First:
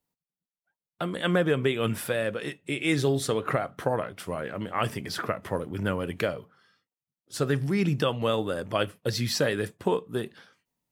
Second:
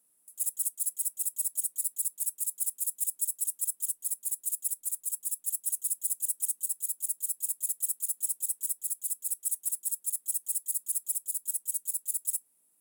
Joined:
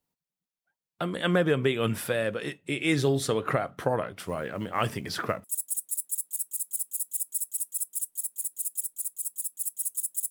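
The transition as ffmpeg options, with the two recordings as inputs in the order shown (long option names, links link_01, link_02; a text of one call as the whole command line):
ffmpeg -i cue0.wav -i cue1.wav -filter_complex "[0:a]asettb=1/sr,asplit=3[link_01][link_02][link_03];[link_01]atrim=end=4.164[link_04];[link_02]atrim=start=4.16:end=5.44,asetpts=PTS-STARTPTS,afade=type=in:duration=0.004:curve=qsin,afade=type=out:start_time=1.276:duration=0.004:curve=qsin,acrusher=bits=8:mode=log:mix=0:aa=0.000001[link_05];[link_03]atrim=start=5.436[link_06];[link_04][link_05]acrossfade=duration=0.004:curve1=hsin:curve2=qsin[link_07];[link_07][link_06]acrossfade=duration=0.004:curve1=qsin:curve2=hsin,apad=whole_dur=10.3,atrim=end=10.3,atrim=end=5.442[link_08];[1:a]atrim=start=1.308:end=6.17[link_09];[link_08][link_09]acrossfade=duration=0.004:curve1=hsin:curve2=hsin" out.wav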